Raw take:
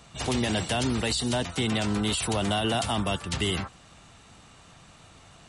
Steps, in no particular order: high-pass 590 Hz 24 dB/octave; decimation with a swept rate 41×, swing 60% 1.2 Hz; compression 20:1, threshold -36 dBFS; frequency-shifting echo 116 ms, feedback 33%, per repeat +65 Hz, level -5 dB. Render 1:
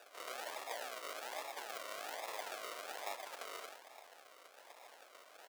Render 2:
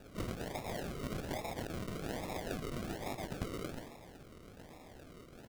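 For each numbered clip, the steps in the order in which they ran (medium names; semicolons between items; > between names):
compression > frequency-shifting echo > decimation with a swept rate > high-pass; frequency-shifting echo > high-pass > compression > decimation with a swept rate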